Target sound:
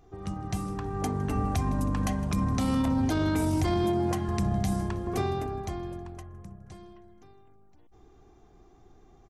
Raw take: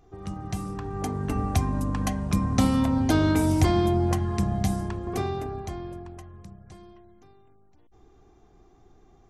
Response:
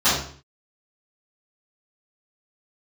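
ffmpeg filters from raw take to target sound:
-filter_complex "[0:a]asettb=1/sr,asplit=3[link_01][link_02][link_03];[link_01]atrim=end=3.844[link_04];[link_02]atrim=start=3.84:end=4.29,asetpts=PTS-STARTPTS,afade=type=in:duration=0.004:curve=qsin,afade=type=out:start_time=0.446:duration=0.004:curve=qsin,highpass=140[link_05];[link_03]atrim=start=4.286[link_06];[link_04][link_05]acrossfade=duration=0.004:curve1=hsin:curve2=qsin[link_07];[link_07][link_06]acrossfade=duration=0.004:curve1=qsin:curve2=hsin,aecho=1:1:159|318|477|636:0.0794|0.0469|0.0277|0.0163,alimiter=limit=-19dB:level=0:latency=1:release=17,asettb=1/sr,asplit=3[link_08][link_09][link_10];[link_08]atrim=end=6.234[link_11];[link_09]atrim=start=6.23:end=6.64,asetpts=PTS-STARTPTS,afade=type=in:duration=0.004:curve=qsin,afade=type=out:start_time=0.406:duration=0.004:curve=qsin,equalizer=frequency=4000:width_type=o:width=1.1:gain=-8.5[link_12];[link_10]atrim=start=6.636[link_13];[link_11][link_12]acrossfade=duration=0.004:curve1=hsin:curve2=qsin[link_14];[link_14][link_13]acrossfade=duration=0.004:curve1=qsin:curve2=hsin"

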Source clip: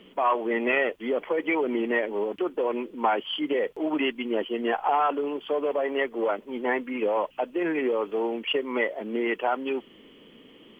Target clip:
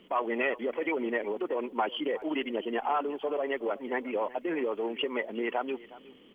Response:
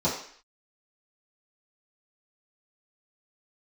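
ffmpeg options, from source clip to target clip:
-af "atempo=1.7,aecho=1:1:365:0.112,volume=-4.5dB"

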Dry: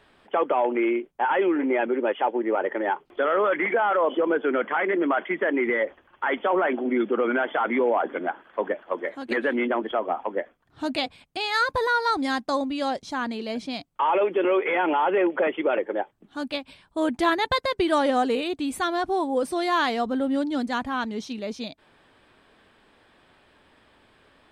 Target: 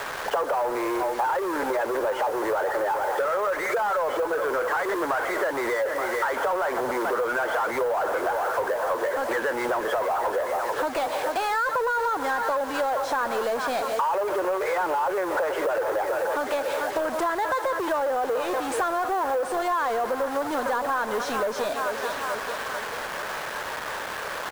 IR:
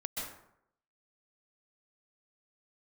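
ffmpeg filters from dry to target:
-filter_complex "[0:a]aecho=1:1:438|876|1314|1752:0.126|0.0604|0.029|0.0139,asplit=2[link_01][link_02];[1:a]atrim=start_sample=2205[link_03];[link_02][link_03]afir=irnorm=-1:irlink=0,volume=-21.5dB[link_04];[link_01][link_04]amix=inputs=2:normalize=0,asoftclip=type=tanh:threshold=-22dB,highpass=90,asplit=2[link_05][link_06];[link_06]highpass=frequency=720:poles=1,volume=26dB,asoftclip=type=tanh:threshold=-21dB[link_07];[link_05][link_07]amix=inputs=2:normalize=0,lowpass=frequency=1500:poles=1,volume=-6dB,equalizer=frequency=250:width_type=o:width=1:gain=-7,equalizer=frequency=500:width_type=o:width=1:gain=11,equalizer=frequency=1000:width_type=o:width=1:gain=8,equalizer=frequency=2000:width_type=o:width=1:gain=-3,equalizer=frequency=8000:width_type=o:width=1:gain=10,acrossover=split=130|3900[link_08][link_09][link_10];[link_09]acrusher=bits=5:mix=0:aa=0.000001[link_11];[link_08][link_11][link_10]amix=inputs=3:normalize=0,equalizer=frequency=1600:width_type=o:width=0.79:gain=9.5,acompressor=threshold=-23dB:ratio=6"

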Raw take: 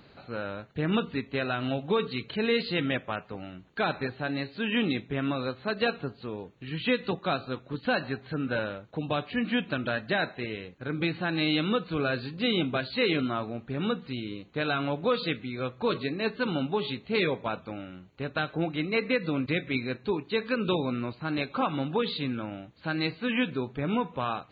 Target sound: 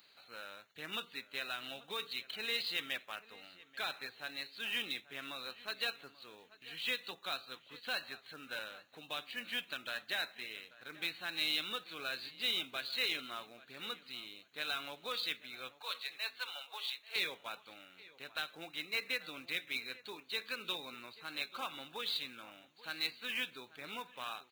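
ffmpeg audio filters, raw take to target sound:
ffmpeg -i in.wav -filter_complex "[0:a]aderivative,acrusher=bits=3:mode=log:mix=0:aa=0.000001,asettb=1/sr,asplit=3[link_01][link_02][link_03];[link_01]atrim=end=15.734[link_04];[link_02]atrim=start=15.73:end=17.16,asetpts=PTS-STARTPTS,afade=type=in:duration=0.004:curve=qsin,afade=type=out:start_time=1.426:duration=0.004:curve=qsin,highpass=frequency=600:width=0.5412,highpass=frequency=600:width=1.3066[link_05];[link_03]atrim=start=17.156[link_06];[link_04][link_05]acrossfade=duration=0.004:curve1=hsin:curve2=qsin[link_07];[link_07][link_06]acrossfade=duration=0.004:curve1=qsin:curve2=hsin,asplit=2[link_08][link_09];[link_09]adelay=836,lowpass=frequency=2500:poles=1,volume=-18dB,asplit=2[link_10][link_11];[link_11]adelay=836,lowpass=frequency=2500:poles=1,volume=0.26[link_12];[link_10][link_12]amix=inputs=2:normalize=0[link_13];[link_08][link_13]amix=inputs=2:normalize=0,volume=3.5dB" out.wav

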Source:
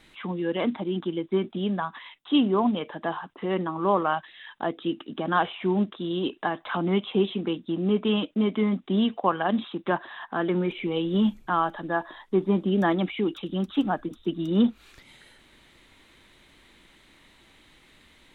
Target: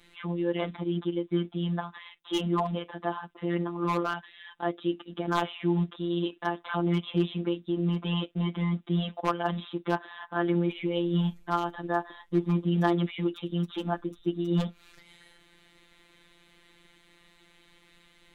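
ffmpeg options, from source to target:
ffmpeg -i in.wav -af "aeval=exprs='0.2*(abs(mod(val(0)/0.2+3,4)-2)-1)':channel_layout=same,afftfilt=real='hypot(re,im)*cos(PI*b)':imag='0':win_size=1024:overlap=0.75" out.wav

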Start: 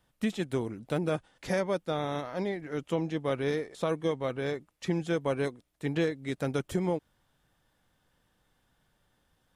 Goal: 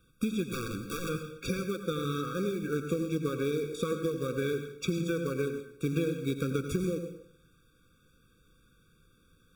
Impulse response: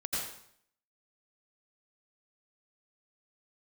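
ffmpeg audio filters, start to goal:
-filter_complex "[0:a]bandreject=frequency=860:width=12,acompressor=threshold=-34dB:ratio=12,acrusher=bits=4:mode=log:mix=0:aa=0.000001,asplit=3[link_01][link_02][link_03];[link_01]afade=type=out:start_time=0.51:duration=0.02[link_04];[link_02]aeval=exprs='(mod(56.2*val(0)+1,2)-1)/56.2':channel_layout=same,afade=type=in:start_time=0.51:duration=0.02,afade=type=out:start_time=1.08:duration=0.02[link_05];[link_03]afade=type=in:start_time=1.08:duration=0.02[link_06];[link_04][link_05][link_06]amix=inputs=3:normalize=0,acontrast=31,asplit=2[link_07][link_08];[1:a]atrim=start_sample=2205[link_09];[link_08][link_09]afir=irnorm=-1:irlink=0,volume=-8.5dB[link_10];[link_07][link_10]amix=inputs=2:normalize=0,afftfilt=real='re*eq(mod(floor(b*sr/1024/550),2),0)':imag='im*eq(mod(floor(b*sr/1024/550),2),0)':win_size=1024:overlap=0.75"

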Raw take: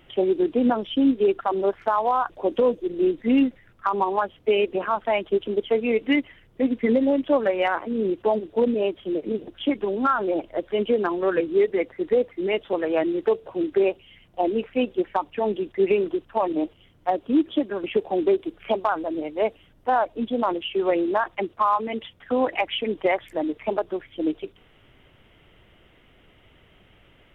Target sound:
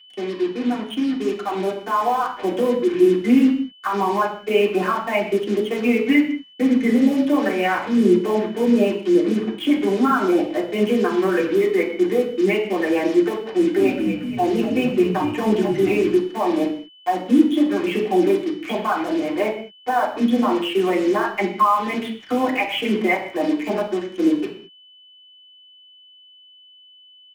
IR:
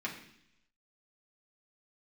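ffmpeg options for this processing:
-filter_complex "[0:a]alimiter=limit=-16dB:level=0:latency=1:release=217,dynaudnorm=framelen=180:gausssize=17:maxgain=8dB,acrusher=bits=4:mix=0:aa=0.5,aeval=exprs='val(0)+0.00794*sin(2*PI*3000*n/s)':channel_layout=same,asplit=3[link_01][link_02][link_03];[link_01]afade=type=out:start_time=13.77:duration=0.02[link_04];[link_02]asplit=7[link_05][link_06][link_07][link_08][link_09][link_10][link_11];[link_06]adelay=231,afreqshift=-71,volume=-8dB[link_12];[link_07]adelay=462,afreqshift=-142,volume=-13.7dB[link_13];[link_08]adelay=693,afreqshift=-213,volume=-19.4dB[link_14];[link_09]adelay=924,afreqshift=-284,volume=-25dB[link_15];[link_10]adelay=1155,afreqshift=-355,volume=-30.7dB[link_16];[link_11]adelay=1386,afreqshift=-426,volume=-36.4dB[link_17];[link_05][link_12][link_13][link_14][link_15][link_16][link_17]amix=inputs=7:normalize=0,afade=type=in:start_time=13.77:duration=0.02,afade=type=out:start_time=16.05:duration=0.02[link_18];[link_03]afade=type=in:start_time=16.05:duration=0.02[link_19];[link_04][link_18][link_19]amix=inputs=3:normalize=0[link_20];[1:a]atrim=start_sample=2205,afade=type=out:start_time=0.27:duration=0.01,atrim=end_sample=12348[link_21];[link_20][link_21]afir=irnorm=-1:irlink=0,volume=-3.5dB"

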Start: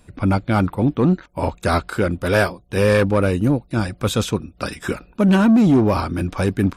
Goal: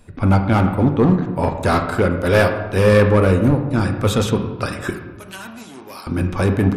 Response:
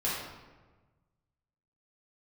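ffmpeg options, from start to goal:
-filter_complex "[0:a]asettb=1/sr,asplit=3[link_01][link_02][link_03];[link_01]atrim=end=4.904[link_04];[link_02]atrim=start=4.9:end=6.07,asetpts=PTS-STARTPTS,afade=type=in:duration=0.004:curve=qsin,afade=type=out:start_time=1.166:duration=0.004:curve=qsin,aderivative[link_05];[link_03]atrim=start=6.066[link_06];[link_04][link_05]acrossfade=duration=0.004:curve1=hsin:curve2=qsin[link_07];[link_07][link_06]acrossfade=duration=0.004:curve1=qsin:curve2=hsin,volume=12dB,asoftclip=hard,volume=-12dB,asplit=2[link_08][link_09];[1:a]atrim=start_sample=2205,lowpass=2800[link_10];[link_09][link_10]afir=irnorm=-1:irlink=0,volume=-9.5dB[link_11];[link_08][link_11]amix=inputs=2:normalize=0"

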